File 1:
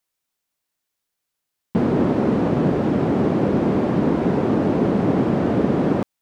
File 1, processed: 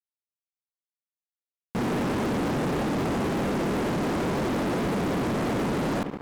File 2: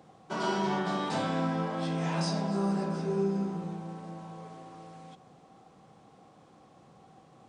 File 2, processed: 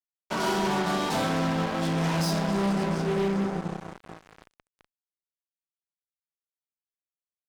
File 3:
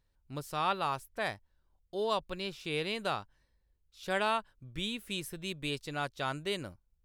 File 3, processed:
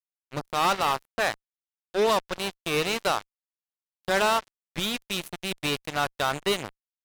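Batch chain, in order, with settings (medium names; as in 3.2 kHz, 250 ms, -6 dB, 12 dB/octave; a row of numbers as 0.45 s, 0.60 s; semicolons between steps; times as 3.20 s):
bucket-brigade echo 73 ms, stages 2048, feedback 80%, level -20 dB; fuzz box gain 32 dB, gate -38 dBFS; normalise loudness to -27 LUFS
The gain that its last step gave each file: -12.0 dB, -9.0 dB, -4.0 dB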